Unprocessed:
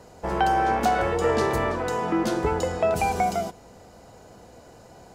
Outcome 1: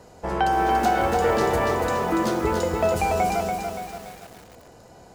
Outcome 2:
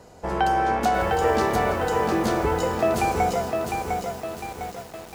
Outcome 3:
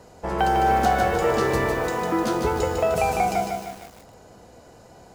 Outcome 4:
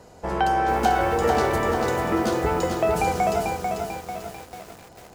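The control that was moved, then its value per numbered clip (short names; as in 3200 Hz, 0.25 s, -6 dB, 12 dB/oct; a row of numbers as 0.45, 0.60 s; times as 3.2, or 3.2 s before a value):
lo-fi delay, time: 0.286, 0.704, 0.152, 0.443 s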